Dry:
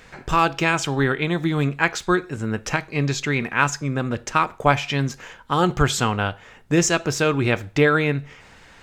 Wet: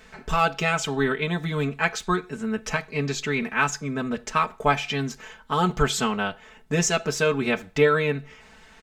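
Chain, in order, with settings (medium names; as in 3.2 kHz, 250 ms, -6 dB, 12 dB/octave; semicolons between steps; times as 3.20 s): comb 4.6 ms, depth 94%; trim -5.5 dB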